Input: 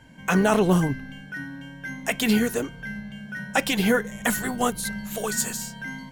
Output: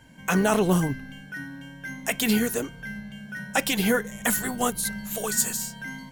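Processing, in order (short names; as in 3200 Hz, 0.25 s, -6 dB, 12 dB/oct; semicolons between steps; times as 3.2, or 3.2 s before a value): high shelf 6900 Hz +8 dB; gain -2 dB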